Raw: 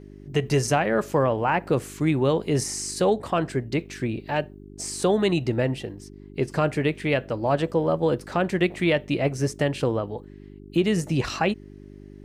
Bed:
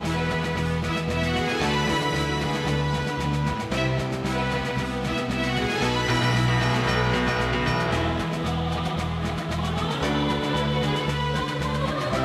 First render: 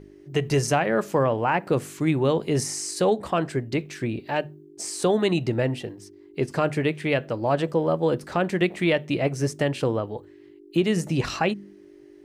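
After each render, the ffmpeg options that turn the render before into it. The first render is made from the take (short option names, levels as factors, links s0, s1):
-af "bandreject=f=50:t=h:w=4,bandreject=f=100:t=h:w=4,bandreject=f=150:t=h:w=4,bandreject=f=200:t=h:w=4,bandreject=f=250:t=h:w=4"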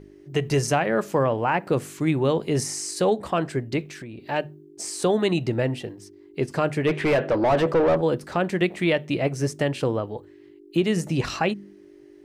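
-filter_complex "[0:a]asettb=1/sr,asplit=3[s0][s1][s2];[s0]atrim=end=3.824[s3];[s1]atrim=start=3.82:end=4.26,asetpts=PTS-STARTPTS,afade=t=in:d=0.004:c=qsin,afade=t=out:st=0.436:d=0.004:c=qsin,acompressor=threshold=0.0178:ratio=6:attack=3.2:release=140:knee=1:detection=peak[s4];[s2]atrim=start=4.256[s5];[s3][s4]acrossfade=d=0.004:c1=hsin:c2=qsin[s6];[s6][s5]acrossfade=d=0.004:c1=qsin:c2=hsin,asplit=3[s7][s8][s9];[s7]afade=t=out:st=6.86:d=0.02[s10];[s8]asplit=2[s11][s12];[s12]highpass=f=720:p=1,volume=17.8,asoftclip=type=tanh:threshold=0.282[s13];[s11][s13]amix=inputs=2:normalize=0,lowpass=f=1000:p=1,volume=0.501,afade=t=in:st=6.86:d=0.02,afade=t=out:st=8:d=0.02[s14];[s9]afade=t=in:st=8:d=0.02[s15];[s10][s14][s15]amix=inputs=3:normalize=0"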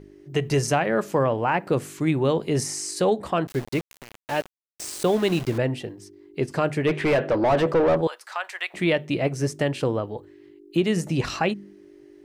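-filter_complex "[0:a]asettb=1/sr,asplit=3[s0][s1][s2];[s0]atrim=end=3.474[s3];[s1]atrim=start=3.47:end=5.58,asetpts=PTS-STARTPTS,afade=t=in:d=0.004:c=qsin,afade=t=out:st=2.106:d=0.004:c=qsin,aeval=exprs='val(0)*gte(abs(val(0)),0.0266)':c=same[s4];[s2]atrim=start=5.576[s5];[s3][s4]acrossfade=d=0.004:c1=hsin:c2=qsin[s6];[s6][s5]acrossfade=d=0.004:c1=qsin:c2=hsin,asettb=1/sr,asplit=3[s7][s8][s9];[s7]atrim=end=8.074[s10];[s8]atrim=start=8.07:end=8.74,asetpts=PTS-STARTPTS,afade=t=in:d=0.004:c=qsin,afade=t=out:st=0.666:d=0.004:c=qsin,highpass=f=860:w=0.5412,highpass=f=860:w=1.3066[s11];[s9]atrim=start=8.736[s12];[s10][s11]acrossfade=d=0.004:c1=hsin:c2=qsin[s13];[s13][s12]acrossfade=d=0.004:c1=qsin:c2=hsin"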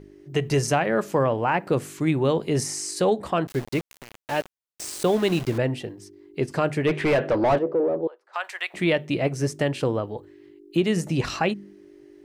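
-filter_complex "[0:a]asplit=3[s0][s1][s2];[s0]afade=t=out:st=7.57:d=0.02[s3];[s1]bandpass=f=390:t=q:w=2,afade=t=in:st=7.57:d=0.02,afade=t=out:st=8.33:d=0.02[s4];[s2]afade=t=in:st=8.33:d=0.02[s5];[s3][s4][s5]amix=inputs=3:normalize=0"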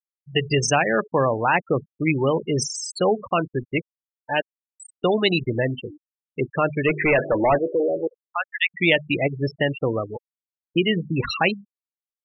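-af "afftfilt=real='re*gte(hypot(re,im),0.0708)':imag='im*gte(hypot(re,im),0.0708)':win_size=1024:overlap=0.75,equalizer=f=4200:t=o:w=2.6:g=13"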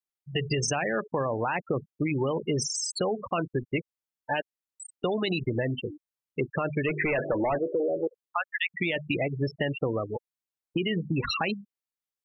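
-af "alimiter=limit=0.188:level=0:latency=1:release=22,acompressor=threshold=0.0631:ratio=6"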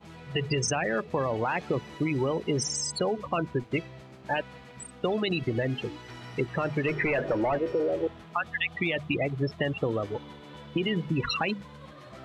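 -filter_complex "[1:a]volume=0.0841[s0];[0:a][s0]amix=inputs=2:normalize=0"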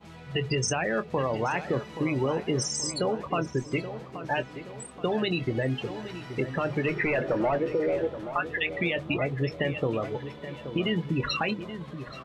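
-filter_complex "[0:a]asplit=2[s0][s1];[s1]adelay=23,volume=0.237[s2];[s0][s2]amix=inputs=2:normalize=0,asplit=2[s3][s4];[s4]adelay=827,lowpass=f=2100:p=1,volume=0.282,asplit=2[s5][s6];[s6]adelay=827,lowpass=f=2100:p=1,volume=0.5,asplit=2[s7][s8];[s8]adelay=827,lowpass=f=2100:p=1,volume=0.5,asplit=2[s9][s10];[s10]adelay=827,lowpass=f=2100:p=1,volume=0.5,asplit=2[s11][s12];[s12]adelay=827,lowpass=f=2100:p=1,volume=0.5[s13];[s5][s7][s9][s11][s13]amix=inputs=5:normalize=0[s14];[s3][s14]amix=inputs=2:normalize=0"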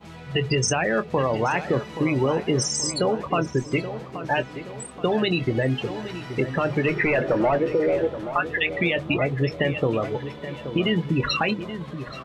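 -af "volume=1.78"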